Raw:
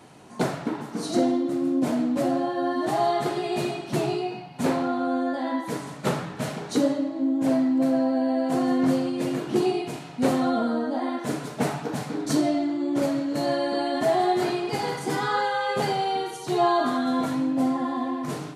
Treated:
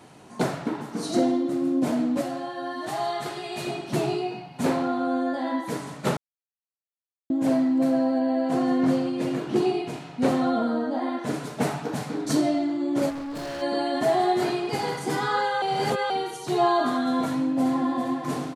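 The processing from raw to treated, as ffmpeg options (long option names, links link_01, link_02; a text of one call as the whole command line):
ffmpeg -i in.wav -filter_complex "[0:a]asettb=1/sr,asplit=3[link_01][link_02][link_03];[link_01]atrim=end=2.214[link_04];[link_02]atrim=start=2.21:end=3.67,asetpts=PTS-STARTPTS,afade=type=in:duration=0.004:curve=qsin,afade=type=out:start_time=1.456:duration=0.004:curve=qsin,equalizer=frequency=290:width=0.41:gain=-9[link_05];[link_03]atrim=start=3.666[link_06];[link_04][link_05]acrossfade=duration=0.004:curve1=hsin:curve2=qsin[link_07];[link_07][link_06]acrossfade=duration=0.004:curve1=qsin:curve2=hsin,asettb=1/sr,asplit=3[link_08][link_09][link_10];[link_08]atrim=end=8.194[link_11];[link_09]atrim=start=8.19:end=11.34,asetpts=PTS-STARTPTS,afade=type=in:duration=0.004:curve=qsin,afade=type=out:start_time=3.146:duration=0.004:curve=qsin,highshelf=frequency=7700:gain=-8.5[link_12];[link_10]atrim=start=11.336[link_13];[link_11][link_12]acrossfade=duration=0.004:curve1=hsin:curve2=qsin[link_14];[link_14][link_13]acrossfade=duration=0.004:curve1=qsin:curve2=hsin,asplit=3[link_15][link_16][link_17];[link_15]afade=type=out:start_time=13.09:duration=0.02[link_18];[link_16]asoftclip=type=hard:threshold=-31.5dB,afade=type=in:start_time=13.09:duration=0.02,afade=type=out:start_time=13.61:duration=0.02[link_19];[link_17]afade=type=in:start_time=13.61:duration=0.02[link_20];[link_18][link_19][link_20]amix=inputs=3:normalize=0,asplit=2[link_21][link_22];[link_22]afade=type=in:start_time=17.25:duration=0.01,afade=type=out:start_time=18.05:duration=0.01,aecho=0:1:400|800|1200|1600|2000|2400:0.473151|0.236576|0.118288|0.0591439|0.029572|0.014786[link_23];[link_21][link_23]amix=inputs=2:normalize=0,asplit=5[link_24][link_25][link_26][link_27][link_28];[link_24]atrim=end=6.17,asetpts=PTS-STARTPTS,afade=type=out:start_time=6.166:duration=0.004:curve=hsin[link_29];[link_25]atrim=start=6.17:end=7.3,asetpts=PTS-STARTPTS,volume=0[link_30];[link_26]atrim=start=7.3:end=15.622,asetpts=PTS-STARTPTS,afade=type=in:duration=0.004:curve=hsin[link_31];[link_27]atrim=start=15.618:end=16.102,asetpts=PTS-STARTPTS,areverse[link_32];[link_28]atrim=start=16.098[link_33];[link_29][link_30][link_31]concat=n=3:v=0:a=1[link_34];[link_34][link_32]acrossfade=duration=0.004:curve1=hsin:curve2=hsin[link_35];[link_35][link_33]acrossfade=duration=0.004:curve1=hsin:curve2=hsin" out.wav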